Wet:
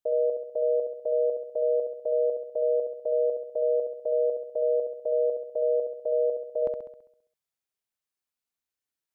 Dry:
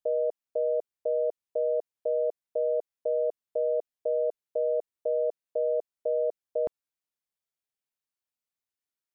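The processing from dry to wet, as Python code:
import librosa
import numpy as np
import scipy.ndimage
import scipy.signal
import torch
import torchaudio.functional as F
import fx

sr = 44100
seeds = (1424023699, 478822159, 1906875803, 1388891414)

y = fx.room_flutter(x, sr, wall_m=11.4, rt60_s=0.73)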